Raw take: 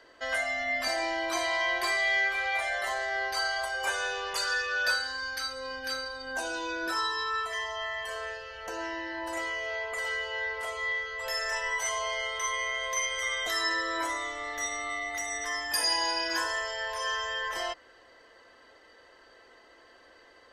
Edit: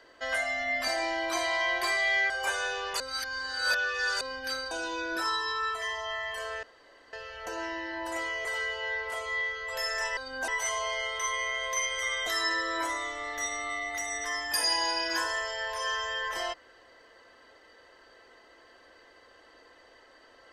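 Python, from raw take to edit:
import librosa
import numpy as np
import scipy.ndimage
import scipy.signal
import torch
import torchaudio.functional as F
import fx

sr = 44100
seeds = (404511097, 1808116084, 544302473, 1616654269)

y = fx.edit(x, sr, fx.cut(start_s=2.3, length_s=1.4),
    fx.reverse_span(start_s=4.4, length_s=1.21),
    fx.move(start_s=6.11, length_s=0.31, to_s=11.68),
    fx.insert_room_tone(at_s=8.34, length_s=0.5),
    fx.cut(start_s=9.66, length_s=0.3), tone=tone)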